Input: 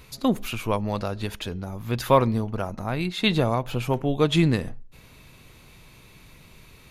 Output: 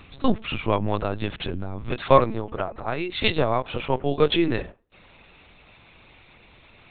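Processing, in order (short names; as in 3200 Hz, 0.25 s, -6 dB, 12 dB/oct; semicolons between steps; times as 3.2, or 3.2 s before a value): HPF 43 Hz 24 dB/oct, from 1.91 s 260 Hz; LPC vocoder at 8 kHz pitch kept; gain +3 dB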